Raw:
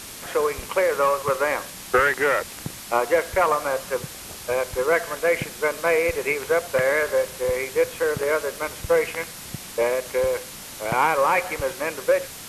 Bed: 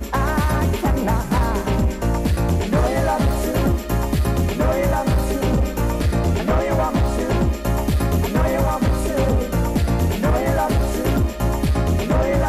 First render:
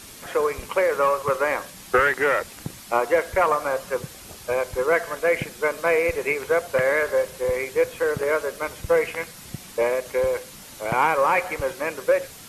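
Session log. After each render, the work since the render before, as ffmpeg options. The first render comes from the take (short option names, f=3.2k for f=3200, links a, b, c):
-af "afftdn=nr=6:nf=-39"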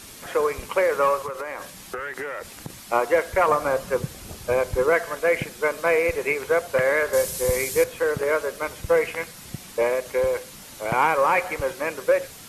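-filter_complex "[0:a]asettb=1/sr,asplit=3[a][b][c];[a]atrim=end=1.264[d];[b]atrim=start=1.26:end=2.8,asetpts=PTS-STARTPTS,afade=t=in:d=0.004:c=qsin,afade=t=out:st=1.536:d=0.004:c=qsin,acompressor=threshold=-27dB:ratio=12:attack=3.2:release=140:knee=1:detection=peak[e];[c]atrim=start=2.796[f];[d][e]acrossfade=d=0.004:c1=hsin:c2=qsin[g];[g][f]acrossfade=d=0.004:c1=qsin:c2=hsin,asettb=1/sr,asplit=3[h][i][j];[h]atrim=end=3.484[k];[i]atrim=start=3.48:end=4.9,asetpts=PTS-STARTPTS,afade=t=in:d=0.004:c=qsin,afade=t=out:st=1.416:d=0.004:c=qsin,lowshelf=f=320:g=8[l];[j]atrim=start=4.896[m];[k][l]acrossfade=d=0.004:c1=hsin:c2=qsin[n];[n][m]acrossfade=d=0.004:c1=qsin:c2=hsin,asettb=1/sr,asplit=3[o][p][q];[o]atrim=end=7.134[r];[p]atrim=start=7.13:end=7.84,asetpts=PTS-STARTPTS,afade=t=in:d=0.004:c=qsin,afade=t=out:st=0.706:d=0.004:c=qsin,bass=f=250:g=7,treble=f=4k:g=14[s];[q]atrim=start=7.836[t];[r][s]acrossfade=d=0.004:c1=hsin:c2=qsin[u];[u][t]acrossfade=d=0.004:c1=qsin:c2=hsin"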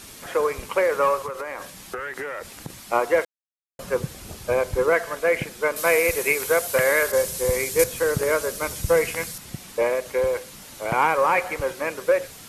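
-filter_complex "[0:a]asettb=1/sr,asplit=3[a][b][c];[a]atrim=end=5.764[d];[b]atrim=start=5.76:end=7.12,asetpts=PTS-STARTPTS,afade=t=in:d=0.004:c=qsin,afade=t=out:st=1.356:d=0.004:c=qsin,aemphasis=mode=production:type=75kf[e];[c]atrim=start=7.116[f];[d][e]acrossfade=d=0.004:c1=hsin:c2=qsin[g];[g][f]acrossfade=d=0.004:c1=qsin:c2=hsin,asettb=1/sr,asplit=3[h][i][j];[h]atrim=end=7.794[k];[i]atrim=start=7.79:end=9.38,asetpts=PTS-STARTPTS,afade=t=in:d=0.004:c=qsin,afade=t=out:st=1.586:d=0.004:c=qsin,bass=f=250:g=7,treble=f=4k:g=10[l];[j]atrim=start=9.376[m];[k][l]acrossfade=d=0.004:c1=hsin:c2=qsin[n];[n][m]acrossfade=d=0.004:c1=qsin:c2=hsin,asplit=3[o][p][q];[o]atrim=end=3.25,asetpts=PTS-STARTPTS,afade=t=out:st=3.246:d=0.004:c=hsin[r];[p]atrim=start=3.25:end=3.79,asetpts=PTS-STARTPTS,volume=0[s];[q]atrim=start=3.79,asetpts=PTS-STARTPTS,afade=t=in:d=0.004:c=hsin[t];[r][s][t]concat=n=3:v=0:a=1"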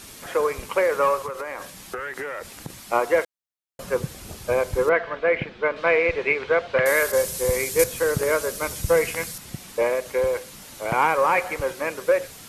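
-filter_complex "[0:a]asettb=1/sr,asplit=3[a][b][c];[a]atrim=end=4.894[d];[b]atrim=start=4.89:end=6.86,asetpts=PTS-STARTPTS,afade=t=in:d=0.004:c=qsin,afade=t=out:st=1.966:d=0.004:c=qsin,lowpass=f=3.5k:w=0.5412,lowpass=f=3.5k:w=1.3066[e];[c]atrim=start=6.856[f];[d][e]acrossfade=d=0.004:c1=hsin:c2=qsin[g];[g][f]acrossfade=d=0.004:c1=qsin:c2=hsin"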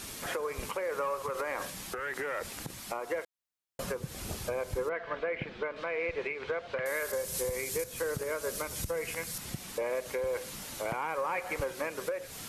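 -af "acompressor=threshold=-27dB:ratio=6,alimiter=limit=-23.5dB:level=0:latency=1:release=272"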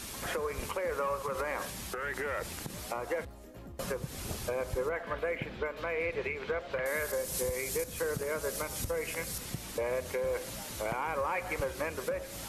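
-filter_complex "[1:a]volume=-29.5dB[a];[0:a][a]amix=inputs=2:normalize=0"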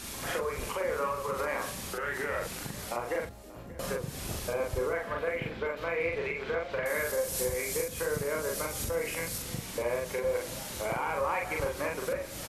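-filter_complex "[0:a]asplit=2[a][b];[b]adelay=42,volume=-2dB[c];[a][c]amix=inputs=2:normalize=0,aecho=1:1:584:0.112"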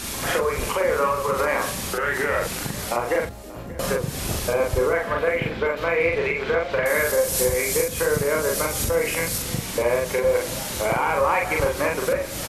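-af "volume=10dB"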